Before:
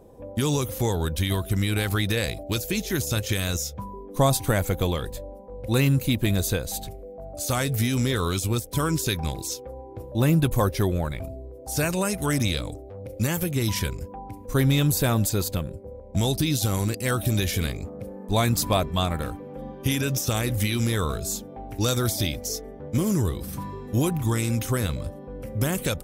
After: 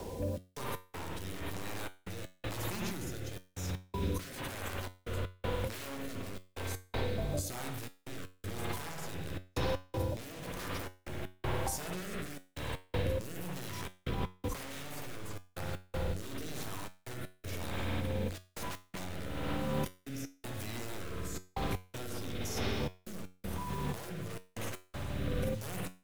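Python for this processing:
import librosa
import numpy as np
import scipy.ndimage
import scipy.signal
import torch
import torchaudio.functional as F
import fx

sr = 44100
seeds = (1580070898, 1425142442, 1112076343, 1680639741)

y = fx.peak_eq(x, sr, hz=950.0, db=11.5, octaves=0.29)
y = (np.mod(10.0 ** (17.5 / 20.0) * y + 1.0, 2.0) - 1.0) / 10.0 ** (17.5 / 20.0)
y = fx.rev_spring(y, sr, rt60_s=1.7, pass_ms=(55,), chirp_ms=80, drr_db=0.5)
y = fx.over_compress(y, sr, threshold_db=-35.0, ratio=-1.0)
y = fx.quant_dither(y, sr, seeds[0], bits=8, dither='none')
y = fx.step_gate(y, sr, bpm=80, pattern='xx.x.xxx', floor_db=-60.0, edge_ms=4.5)
y = fx.rotary(y, sr, hz=1.0)
y = fx.comb_fb(y, sr, f0_hz=92.0, decay_s=0.31, harmonics='all', damping=0.0, mix_pct=60)
y = fx.band_squash(y, sr, depth_pct=40)
y = F.gain(torch.from_numpy(y), 3.0).numpy()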